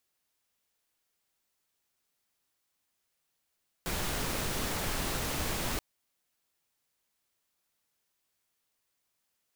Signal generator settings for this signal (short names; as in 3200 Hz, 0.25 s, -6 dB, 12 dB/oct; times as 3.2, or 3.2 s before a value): noise pink, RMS -33 dBFS 1.93 s